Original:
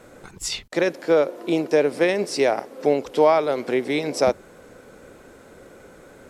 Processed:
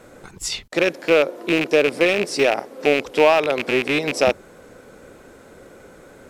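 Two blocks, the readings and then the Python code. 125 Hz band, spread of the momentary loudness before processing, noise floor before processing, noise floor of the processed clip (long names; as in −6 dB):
+1.5 dB, 8 LU, −48 dBFS, −47 dBFS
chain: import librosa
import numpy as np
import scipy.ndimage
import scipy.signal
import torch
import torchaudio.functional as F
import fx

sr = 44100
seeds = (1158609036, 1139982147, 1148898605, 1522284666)

y = fx.rattle_buzz(x, sr, strikes_db=-33.0, level_db=-12.0)
y = y * librosa.db_to_amplitude(1.5)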